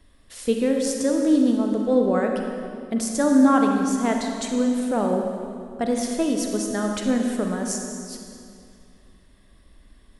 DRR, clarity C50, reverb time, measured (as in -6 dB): 2.0 dB, 2.5 dB, 2.5 s